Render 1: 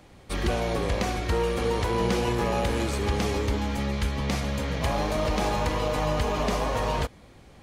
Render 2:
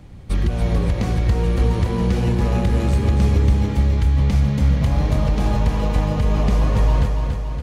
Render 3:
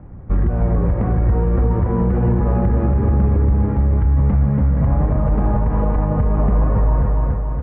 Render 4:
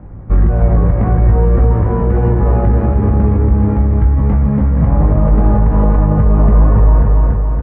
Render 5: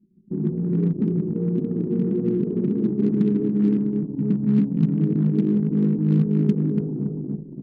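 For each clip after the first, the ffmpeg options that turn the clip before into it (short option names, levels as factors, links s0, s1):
-filter_complex "[0:a]bass=f=250:g=15,treble=f=4000:g=-1,acompressor=threshold=0.178:ratio=6,asplit=2[s0][s1];[s1]aecho=0:1:283|566|849|1132|1415|1698|1981|2264:0.531|0.308|0.179|0.104|0.0601|0.0348|0.0202|0.0117[s2];[s0][s2]amix=inputs=2:normalize=0"
-af "lowpass=f=1500:w=0.5412,lowpass=f=1500:w=1.3066,alimiter=level_in=3.55:limit=0.891:release=50:level=0:latency=1,volume=0.422"
-filter_complex "[0:a]asplit=2[s0][s1];[s1]adelay=19,volume=0.562[s2];[s0][s2]amix=inputs=2:normalize=0,volume=1.5"
-af "asuperpass=centerf=250:order=12:qfactor=0.92,acrusher=bits=6:mode=log:mix=0:aa=0.000001,anlmdn=631,volume=0.841"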